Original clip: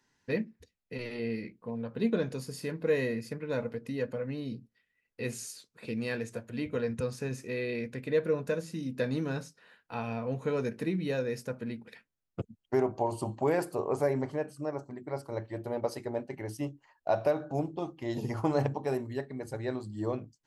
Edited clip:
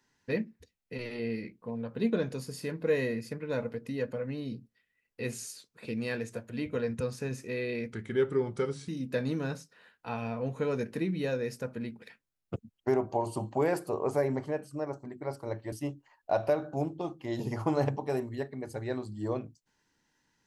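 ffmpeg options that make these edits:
-filter_complex "[0:a]asplit=4[s0][s1][s2][s3];[s0]atrim=end=7.934[s4];[s1]atrim=start=7.93:end=8.74,asetpts=PTS-STARTPTS,asetrate=37485,aresample=44100[s5];[s2]atrim=start=8.736:end=15.582[s6];[s3]atrim=start=16.498[s7];[s4][s5]acrossfade=d=0.004:c1=hsin:c2=hsin[s8];[s8][s6]acrossfade=d=0.004:c1=hsin:c2=hsin[s9];[s9][s7]acrossfade=d=0.004:c1=hsin:c2=hsin"

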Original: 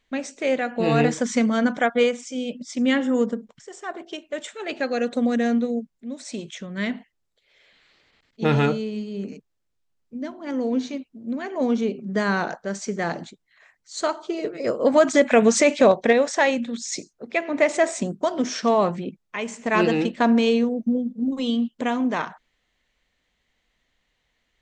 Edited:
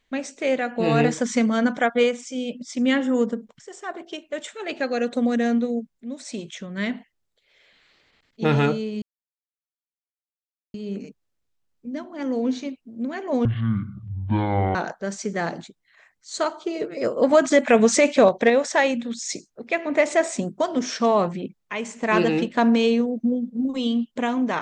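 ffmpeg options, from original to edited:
-filter_complex "[0:a]asplit=4[s0][s1][s2][s3];[s0]atrim=end=9.02,asetpts=PTS-STARTPTS,afade=t=out:st=9.016:d=0.004:c=hsin,apad=pad_dur=1.72[s4];[s1]atrim=start=9.02:end=11.734,asetpts=PTS-STARTPTS,afade=t=in:d=0.004:c=hsin[s5];[s2]atrim=start=11.73:end=12.38,asetpts=PTS-STARTPTS,asetrate=22050,aresample=44100[s6];[s3]atrim=start=12.376[s7];[s4][s5]concat=n=2:v=0:a=1[s8];[s8][s6]acrossfade=d=0.004:c1=hsin:c2=hsin[s9];[s9][s7]acrossfade=d=0.004:c1=hsin:c2=hsin"

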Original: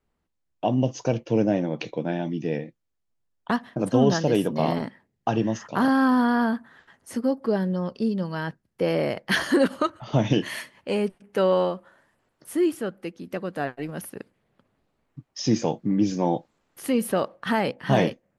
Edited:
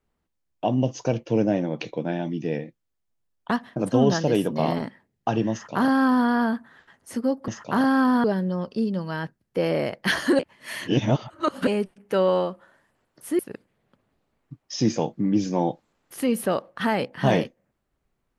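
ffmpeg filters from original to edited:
-filter_complex "[0:a]asplit=6[s0][s1][s2][s3][s4][s5];[s0]atrim=end=7.482[s6];[s1]atrim=start=5.518:end=6.282[s7];[s2]atrim=start=7.478:end=9.632[s8];[s3]atrim=start=9.628:end=10.912,asetpts=PTS-STARTPTS,areverse[s9];[s4]atrim=start=10.908:end=12.632[s10];[s5]atrim=start=14.048[s11];[s6][s7]acrossfade=d=0.004:c1=hsin:c2=hsin[s12];[s12][s8]acrossfade=d=0.004:c1=hsin:c2=hsin[s13];[s13][s9]acrossfade=d=0.004:c1=hsin:c2=hsin[s14];[s14][s10]acrossfade=d=0.004:c1=hsin:c2=hsin[s15];[s15][s11]acrossfade=d=0.004:c1=hsin:c2=hsin"

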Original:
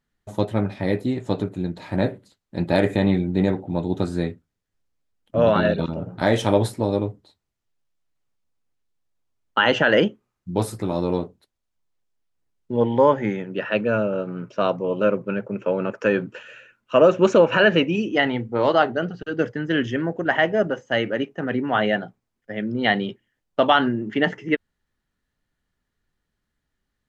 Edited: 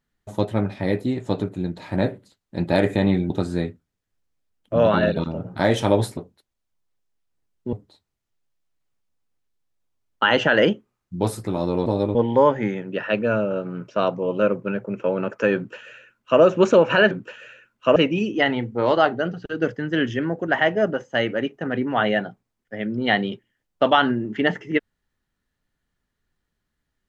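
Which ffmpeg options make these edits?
-filter_complex "[0:a]asplit=8[s0][s1][s2][s3][s4][s5][s6][s7];[s0]atrim=end=3.302[s8];[s1]atrim=start=3.918:end=6.792[s9];[s2]atrim=start=11.208:end=12.772[s10];[s3]atrim=start=7.078:end=11.212[s11];[s4]atrim=start=6.788:end=7.082[s12];[s5]atrim=start=12.768:end=17.732[s13];[s6]atrim=start=16.178:end=17.032[s14];[s7]atrim=start=17.728[s15];[s8][s9]acrossfade=d=0.004:c1=hsin:c2=hsin[s16];[s16][s10]acrossfade=d=0.004:c1=hsin:c2=hsin[s17];[s17][s11]acrossfade=d=0.004:c1=hsin:c2=hsin[s18];[s18][s12]acrossfade=d=0.004:c1=hsin:c2=hsin[s19];[s19][s13]acrossfade=d=0.004:c1=hsin:c2=hsin[s20];[s20][s14]acrossfade=d=0.004:c1=hsin:c2=hsin[s21];[s21][s15]acrossfade=d=0.004:c1=hsin:c2=hsin"

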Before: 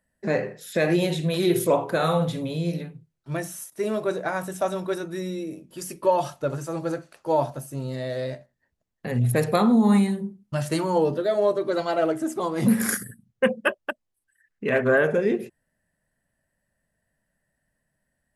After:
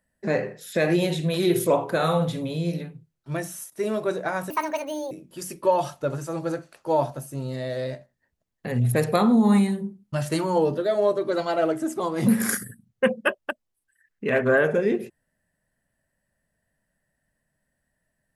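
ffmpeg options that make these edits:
-filter_complex "[0:a]asplit=3[s0][s1][s2];[s0]atrim=end=4.504[s3];[s1]atrim=start=4.5:end=5.51,asetpts=PTS-STARTPTS,asetrate=72765,aresample=44100[s4];[s2]atrim=start=5.506[s5];[s3][s4]acrossfade=d=0.004:c1=hsin:c2=hsin[s6];[s6][s5]acrossfade=d=0.004:c1=hsin:c2=hsin"

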